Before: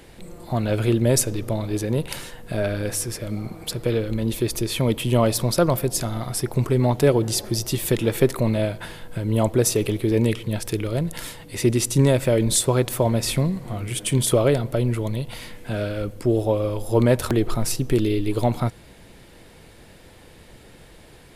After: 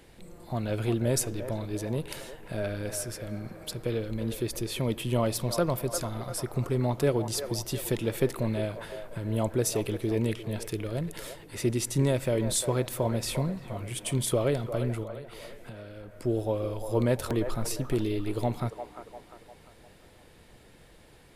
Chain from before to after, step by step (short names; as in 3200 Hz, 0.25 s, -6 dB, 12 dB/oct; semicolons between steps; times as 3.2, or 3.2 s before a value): 15.03–16.2 compressor 12:1, threshold -32 dBFS, peak gain reduction 11 dB; band-limited delay 0.349 s, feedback 45%, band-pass 960 Hz, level -7 dB; gain -8 dB